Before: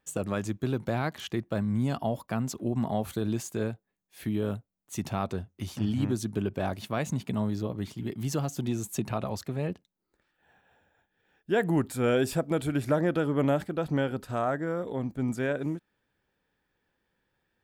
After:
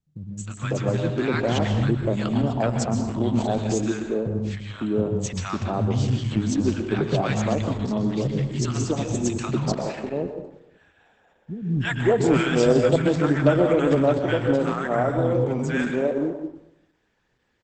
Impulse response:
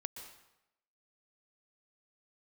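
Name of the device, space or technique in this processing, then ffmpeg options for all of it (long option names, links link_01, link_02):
speakerphone in a meeting room: -filter_complex "[0:a]asettb=1/sr,asplit=3[link_01][link_02][link_03];[link_01]atrim=end=3.364[link_04];[link_02]atrim=start=3.36:end=4.32,asetpts=PTS-STARTPTS,afade=type=in:duration=0.004:curve=qsin,afade=type=out:start_time=0.956:duration=0.004:curve=qsin,lowpass=9700[link_05];[link_03]atrim=start=4.316[link_06];[link_04][link_05]acrossfade=duration=0.004:curve1=hsin:curve2=qsin[link_07];[link_07][link_06]acrossfade=duration=0.004:curve1=qsin:curve2=hsin,acrossover=split=200|1000[link_08][link_09][link_10];[link_10]adelay=310[link_11];[link_09]adelay=550[link_12];[link_08][link_12][link_11]amix=inputs=3:normalize=0[link_13];[1:a]atrim=start_sample=2205[link_14];[link_13][link_14]afir=irnorm=-1:irlink=0,dynaudnorm=framelen=460:gausssize=3:maxgain=6.5dB,volume=5dB" -ar 48000 -c:a libopus -b:a 12k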